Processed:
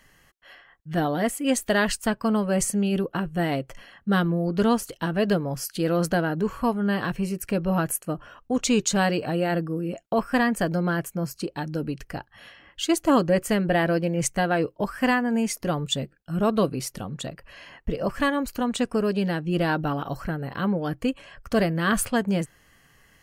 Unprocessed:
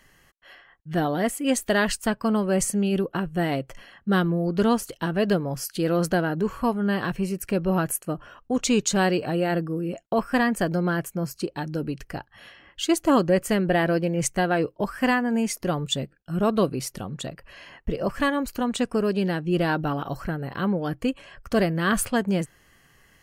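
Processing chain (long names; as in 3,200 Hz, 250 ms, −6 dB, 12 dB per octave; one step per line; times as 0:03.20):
notch filter 370 Hz, Q 12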